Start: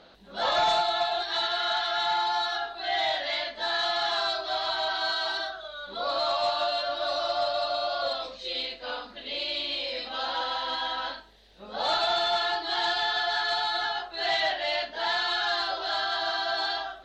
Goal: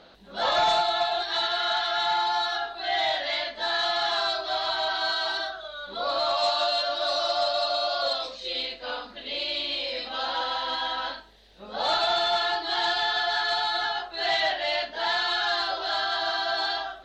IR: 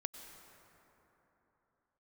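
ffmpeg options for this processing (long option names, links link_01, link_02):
-filter_complex "[0:a]asettb=1/sr,asplit=3[link_01][link_02][link_03];[link_01]atrim=end=6.374[link_04];[link_02]atrim=start=6.37:end=8.4,asetpts=PTS-STARTPTS,afade=type=in:duration=0.004:curve=qsin,afade=type=out:start_time=2.026:duration=0.004:curve=qsin,bass=frequency=250:gain=-4,treble=frequency=4000:gain=7[link_05];[link_03]atrim=start=8.396[link_06];[link_04][link_05]acrossfade=duration=0.004:curve1=hsin:curve2=qsin[link_07];[link_07][link_06]acrossfade=duration=0.004:curve1=qsin:curve2=hsin,volume=1.5dB"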